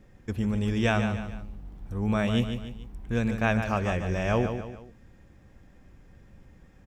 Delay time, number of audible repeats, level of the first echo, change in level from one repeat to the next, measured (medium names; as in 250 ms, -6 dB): 146 ms, 3, -8.0 dB, -7.5 dB